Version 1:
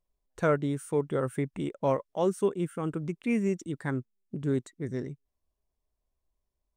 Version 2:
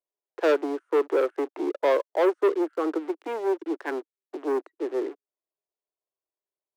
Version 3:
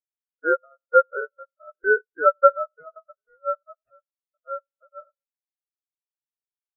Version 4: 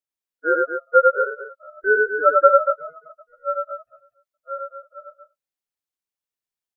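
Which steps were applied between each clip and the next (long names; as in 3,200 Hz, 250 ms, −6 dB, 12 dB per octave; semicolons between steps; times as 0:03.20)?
low-pass filter 1,200 Hz 12 dB per octave; leveller curve on the samples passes 3; Butterworth high-pass 310 Hz 72 dB per octave
echo with a time of its own for lows and highs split 520 Hz, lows 92 ms, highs 661 ms, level −13.5 dB; ring modulation 960 Hz; every bin expanded away from the loudest bin 4 to 1; level +8 dB
loudspeakers that aren't time-aligned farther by 33 metres −2 dB, 81 metres −8 dB; level +1 dB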